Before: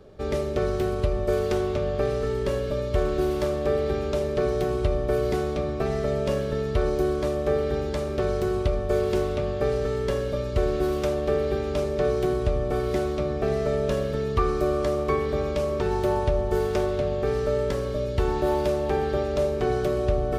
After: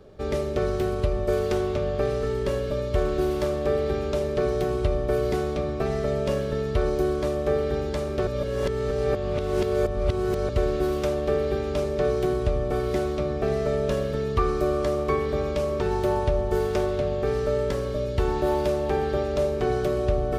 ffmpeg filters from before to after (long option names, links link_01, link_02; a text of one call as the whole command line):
ffmpeg -i in.wav -filter_complex "[0:a]asplit=3[link_01][link_02][link_03];[link_01]atrim=end=8.272[link_04];[link_02]atrim=start=8.268:end=10.492,asetpts=PTS-STARTPTS,areverse[link_05];[link_03]atrim=start=10.488[link_06];[link_04][link_05]acrossfade=duration=0.004:curve1=hsin:curve2=hsin[link_07];[link_07][link_06]acrossfade=duration=0.004:curve1=hsin:curve2=hsin" out.wav